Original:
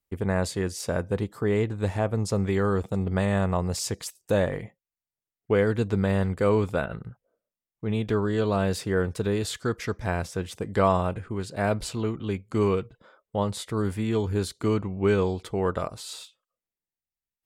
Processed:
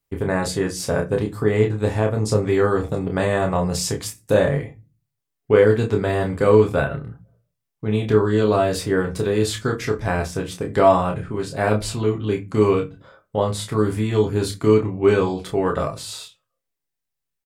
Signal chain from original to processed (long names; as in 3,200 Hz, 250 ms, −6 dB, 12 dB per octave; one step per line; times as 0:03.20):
double-tracking delay 28 ms −5 dB
convolution reverb, pre-delay 7 ms, DRR 6.5 dB
level +4 dB